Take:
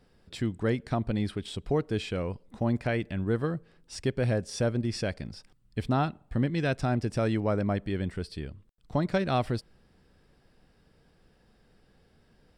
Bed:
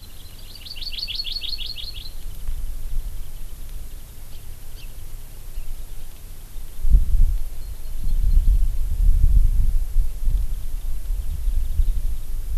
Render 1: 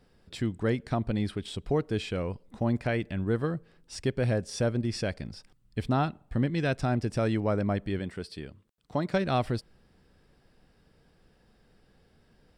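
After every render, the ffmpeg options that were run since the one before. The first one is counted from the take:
ffmpeg -i in.wav -filter_complex "[0:a]asettb=1/sr,asplit=3[link_01][link_02][link_03];[link_01]atrim=end=7.994[link_04];[link_02]atrim=start=7.99:end=9.14,asetpts=PTS-STARTPTS,afade=type=in:duration=0.004:curve=qsin,afade=type=out:start_time=1.146:duration=0.004:curve=qsin,highpass=frequency=190:poles=1[link_05];[link_03]atrim=start=9.136[link_06];[link_04][link_05]acrossfade=duration=0.004:curve1=hsin:curve2=qsin[link_07];[link_07][link_06]acrossfade=duration=0.004:curve1=qsin:curve2=hsin" out.wav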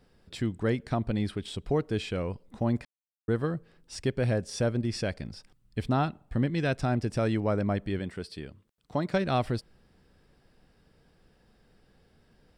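ffmpeg -i in.wav -filter_complex "[0:a]asplit=3[link_01][link_02][link_03];[link_01]atrim=end=2.85,asetpts=PTS-STARTPTS,afade=type=out:start_time=2.846:duration=0.004:curve=hsin[link_04];[link_02]atrim=start=2.85:end=3.28,asetpts=PTS-STARTPTS,volume=0[link_05];[link_03]atrim=start=3.28,asetpts=PTS-STARTPTS,afade=type=in:duration=0.004:curve=hsin[link_06];[link_04][link_05][link_06]concat=n=3:v=0:a=1" out.wav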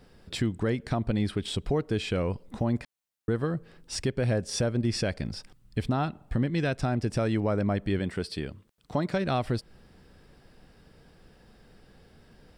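ffmpeg -i in.wav -filter_complex "[0:a]asplit=2[link_01][link_02];[link_02]acompressor=threshold=-34dB:ratio=6,volume=2dB[link_03];[link_01][link_03]amix=inputs=2:normalize=0,alimiter=limit=-16.5dB:level=0:latency=1:release=199" out.wav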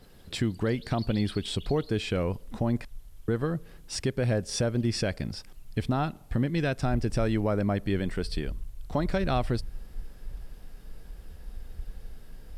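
ffmpeg -i in.wav -i bed.wav -filter_complex "[1:a]volume=-18.5dB[link_01];[0:a][link_01]amix=inputs=2:normalize=0" out.wav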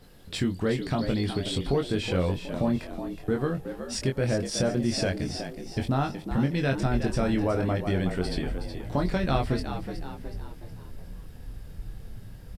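ffmpeg -i in.wav -filter_complex "[0:a]asplit=2[link_01][link_02];[link_02]adelay=22,volume=-4.5dB[link_03];[link_01][link_03]amix=inputs=2:normalize=0,asplit=6[link_04][link_05][link_06][link_07][link_08][link_09];[link_05]adelay=369,afreqshift=72,volume=-9.5dB[link_10];[link_06]adelay=738,afreqshift=144,volume=-16.8dB[link_11];[link_07]adelay=1107,afreqshift=216,volume=-24.2dB[link_12];[link_08]adelay=1476,afreqshift=288,volume=-31.5dB[link_13];[link_09]adelay=1845,afreqshift=360,volume=-38.8dB[link_14];[link_04][link_10][link_11][link_12][link_13][link_14]amix=inputs=6:normalize=0" out.wav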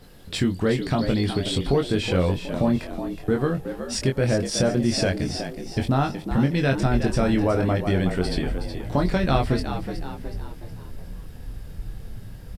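ffmpeg -i in.wav -af "volume=4.5dB" out.wav

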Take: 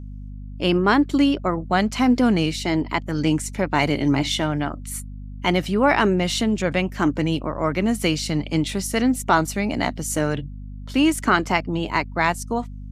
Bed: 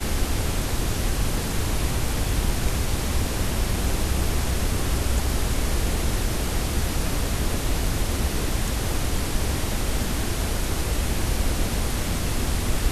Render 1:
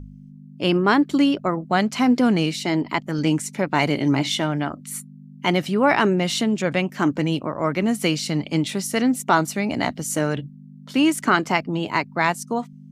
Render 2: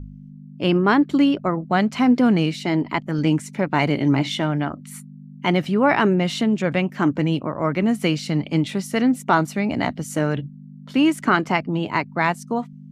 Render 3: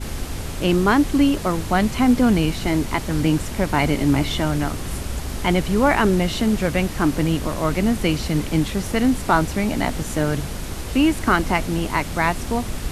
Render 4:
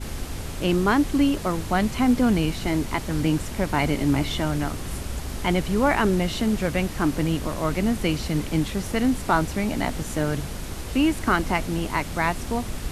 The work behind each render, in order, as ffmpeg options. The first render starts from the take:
ffmpeg -i in.wav -af "bandreject=frequency=50:width_type=h:width=4,bandreject=frequency=100:width_type=h:width=4" out.wav
ffmpeg -i in.wav -af "bass=frequency=250:gain=3,treble=frequency=4000:gain=-8" out.wav
ffmpeg -i in.wav -i bed.wav -filter_complex "[1:a]volume=-4.5dB[link_01];[0:a][link_01]amix=inputs=2:normalize=0" out.wav
ffmpeg -i in.wav -af "volume=-3.5dB" out.wav

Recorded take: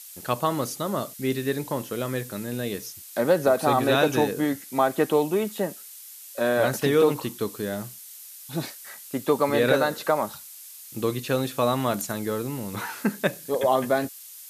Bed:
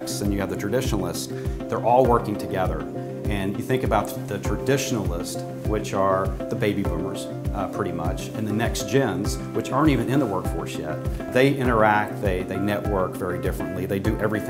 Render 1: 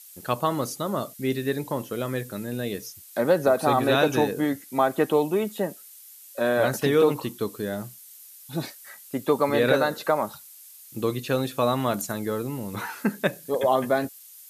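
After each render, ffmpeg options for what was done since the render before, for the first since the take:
ffmpeg -i in.wav -af "afftdn=noise_reduction=6:noise_floor=-44" out.wav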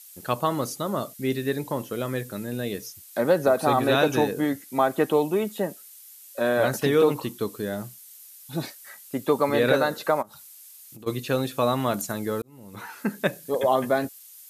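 ffmpeg -i in.wav -filter_complex "[0:a]asplit=3[link_01][link_02][link_03];[link_01]afade=type=out:start_time=10.21:duration=0.02[link_04];[link_02]acompressor=threshold=-41dB:ratio=12:attack=3.2:release=140:knee=1:detection=peak,afade=type=in:start_time=10.21:duration=0.02,afade=type=out:start_time=11.06:duration=0.02[link_05];[link_03]afade=type=in:start_time=11.06:duration=0.02[link_06];[link_04][link_05][link_06]amix=inputs=3:normalize=0,asplit=2[link_07][link_08];[link_07]atrim=end=12.42,asetpts=PTS-STARTPTS,afade=type=out:start_time=12.416:duration=0.004:curve=hsin[link_09];[link_08]atrim=start=12.42,asetpts=PTS-STARTPTS,afade=type=in:duration=0.86[link_10];[link_09][link_10]concat=n=2:v=0:a=1" out.wav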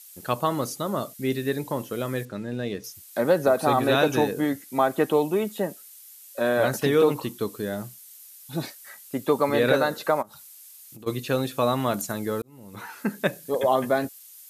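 ffmpeg -i in.wav -filter_complex "[0:a]asettb=1/sr,asplit=3[link_01][link_02][link_03];[link_01]atrim=end=2.254[link_04];[link_02]atrim=start=2.25:end=2.84,asetpts=PTS-STARTPTS,afade=type=in:duration=0.004:curve=qsin,afade=type=out:start_time=0.586:duration=0.004:curve=qsin,adynamicsmooth=sensitivity=4:basefreq=4500[link_05];[link_03]atrim=start=2.836[link_06];[link_04][link_05]acrossfade=duration=0.004:curve1=hsin:curve2=qsin[link_07];[link_07][link_06]acrossfade=duration=0.004:curve1=qsin:curve2=hsin" out.wav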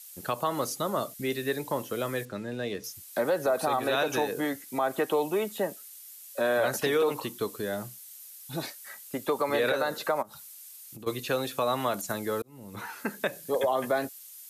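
ffmpeg -i in.wav -filter_complex "[0:a]acrossover=split=390|440|3600[link_01][link_02][link_03][link_04];[link_01]acompressor=threshold=-36dB:ratio=6[link_05];[link_05][link_02][link_03][link_04]amix=inputs=4:normalize=0,alimiter=limit=-17dB:level=0:latency=1:release=100" out.wav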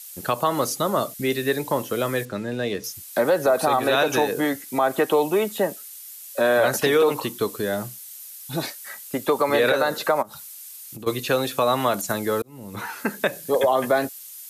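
ffmpeg -i in.wav -af "volume=7dB" out.wav

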